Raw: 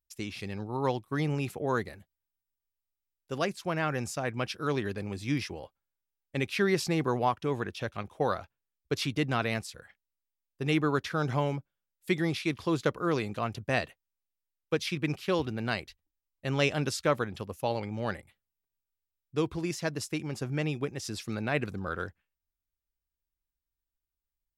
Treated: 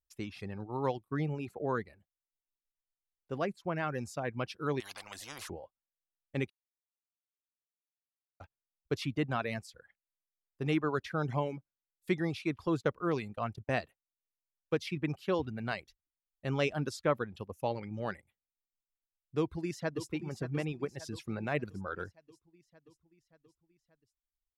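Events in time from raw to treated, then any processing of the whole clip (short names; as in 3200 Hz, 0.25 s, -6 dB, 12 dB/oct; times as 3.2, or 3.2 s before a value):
1.08–3.76 high shelf 3400 Hz -8 dB
4.8–5.5 spectral compressor 10:1
6.5–8.4 mute
12.67–13.75 gate -43 dBFS, range -21 dB
19.38–20.09 echo throw 0.58 s, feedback 60%, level -9.5 dB
whole clip: reverb removal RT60 0.91 s; high shelf 2700 Hz -8.5 dB; gain -2 dB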